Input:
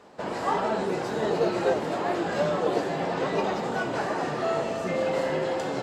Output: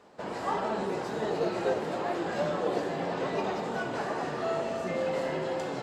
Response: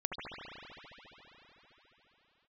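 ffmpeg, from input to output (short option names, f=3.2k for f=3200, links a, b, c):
-filter_complex "[0:a]asplit=2[a][b];[1:a]atrim=start_sample=2205,asetrate=57330,aresample=44100[c];[b][c]afir=irnorm=-1:irlink=0,volume=-9dB[d];[a][d]amix=inputs=2:normalize=0,volume=-6.5dB"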